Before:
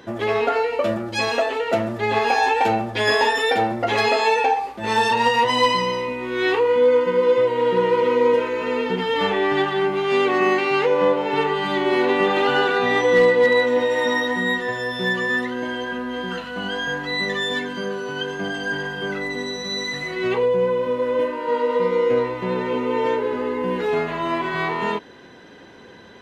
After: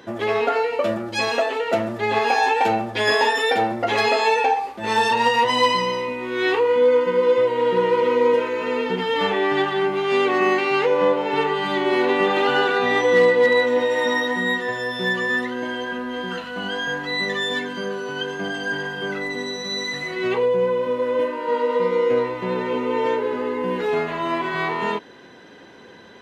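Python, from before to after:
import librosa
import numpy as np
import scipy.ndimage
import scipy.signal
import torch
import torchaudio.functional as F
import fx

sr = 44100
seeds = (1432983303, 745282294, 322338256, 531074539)

y = fx.low_shelf(x, sr, hz=84.0, db=-9.5)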